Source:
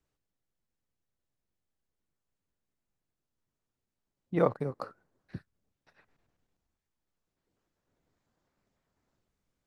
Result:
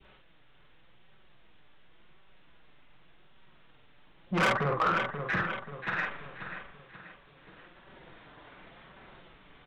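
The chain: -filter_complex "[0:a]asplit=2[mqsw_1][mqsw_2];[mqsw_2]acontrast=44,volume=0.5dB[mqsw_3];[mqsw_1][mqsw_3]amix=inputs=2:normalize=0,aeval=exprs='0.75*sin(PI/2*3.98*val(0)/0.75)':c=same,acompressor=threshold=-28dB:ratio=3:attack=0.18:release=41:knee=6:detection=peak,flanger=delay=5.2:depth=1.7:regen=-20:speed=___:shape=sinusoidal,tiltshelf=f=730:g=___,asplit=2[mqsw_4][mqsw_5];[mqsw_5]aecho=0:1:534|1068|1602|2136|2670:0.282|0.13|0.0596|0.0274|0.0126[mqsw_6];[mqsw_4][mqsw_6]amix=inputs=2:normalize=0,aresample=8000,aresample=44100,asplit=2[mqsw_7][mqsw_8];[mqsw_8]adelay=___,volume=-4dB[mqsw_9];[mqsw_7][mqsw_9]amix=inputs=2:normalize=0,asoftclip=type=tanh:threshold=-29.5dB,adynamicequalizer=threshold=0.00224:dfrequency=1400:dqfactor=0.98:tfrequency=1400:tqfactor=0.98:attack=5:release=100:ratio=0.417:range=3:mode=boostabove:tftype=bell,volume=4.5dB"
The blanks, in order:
0.89, -5, 48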